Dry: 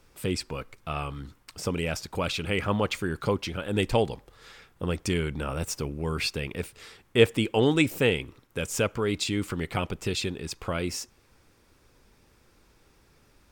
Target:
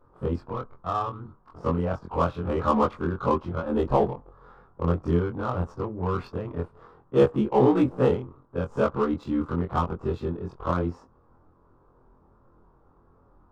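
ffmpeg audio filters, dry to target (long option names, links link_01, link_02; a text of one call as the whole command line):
ffmpeg -i in.wav -af "afftfilt=real='re':imag='-im':win_size=2048:overlap=0.75,highshelf=frequency=1600:width_type=q:width=3:gain=-11.5,adynamicsmooth=sensitivity=8:basefreq=1700,volume=6.5dB" out.wav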